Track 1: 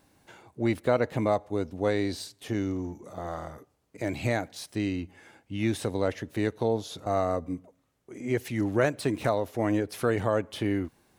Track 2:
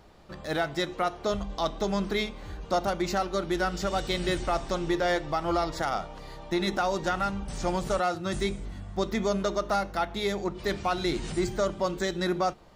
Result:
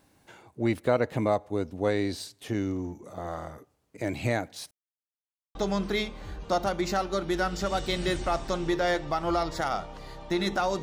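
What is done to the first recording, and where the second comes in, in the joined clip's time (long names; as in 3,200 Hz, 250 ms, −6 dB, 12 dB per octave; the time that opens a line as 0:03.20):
track 1
0:04.71–0:05.55: silence
0:05.55: continue with track 2 from 0:01.76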